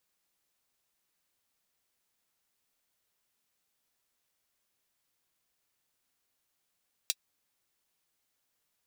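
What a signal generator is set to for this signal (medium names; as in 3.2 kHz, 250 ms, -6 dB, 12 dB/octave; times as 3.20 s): closed hi-hat, high-pass 3.5 kHz, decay 0.05 s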